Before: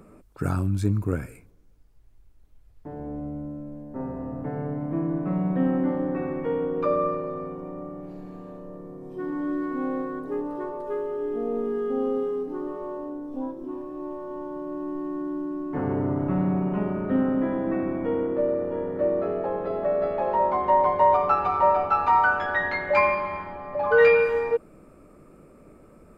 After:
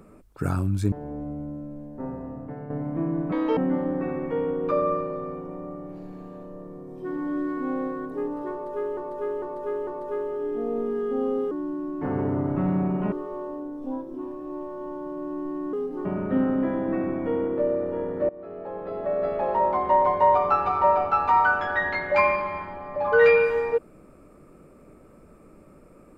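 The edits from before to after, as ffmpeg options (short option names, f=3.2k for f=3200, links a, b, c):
-filter_complex "[0:a]asplit=13[a][b][c][d][e][f][g][h][i][j][k][l][m];[a]atrim=end=0.922[n];[b]atrim=start=2.878:end=4.66,asetpts=PTS-STARTPTS,afade=t=out:st=1.022:d=0.76:silence=0.398107[o];[c]atrim=start=4.66:end=5.284,asetpts=PTS-STARTPTS,afade=t=in:d=0.004:c=hsin:silence=0.398107[p];[d]atrim=start=5.28:end=5.71,asetpts=PTS-STARTPTS,asetrate=75411,aresample=44100,atrim=end_sample=11089,asetpts=PTS-STARTPTS[q];[e]atrim=start=5.706:end=11.112[r];[f]atrim=start=10.658:end=11.112[s];[g]atrim=start=10.658:end=11.112[t];[h]atrim=start=10.658:end=12.302[u];[i]atrim=start=15.228:end=16.842[v];[j]atrim=start=12.618:end=15.232[w];[k]atrim=start=12.298:end=12.622[x];[l]atrim=start=16.838:end=19.08,asetpts=PTS-STARTPTS,afade=t=out:st=2.238:d=0.004:c=hsin:silence=0.0891251[y];[m]atrim=start=19.08,asetpts=PTS-STARTPTS,afade=t=in:d=1.06:silence=0.0891251[z];[o][p]concat=n=2:v=0:a=1[aa];[n][aa]acrossfade=d=0.004:c1=hsin:c2=hsin[ab];[ab][q]acrossfade=d=0.004:c1=hsin:c2=hsin[ac];[ac][r]acrossfade=d=0.004:c1=hsin:c2=hsin[ad];[ad][s]acrossfade=d=0.004:c1=hsin:c2=hsin[ae];[ae][t]acrossfade=d=0.004:c1=hsin:c2=hsin[af];[af][u]acrossfade=d=0.004:c1=hsin:c2=hsin[ag];[ag][v]acrossfade=d=0.004:c1=hsin:c2=hsin[ah];[ah][w]acrossfade=d=0.004:c1=hsin:c2=hsin[ai];[ai][x]acrossfade=d=0.004:c1=hsin:c2=hsin[aj];[y][z]concat=n=2:v=0:a=1[ak];[aj][ak]acrossfade=d=0.004:c1=hsin:c2=hsin"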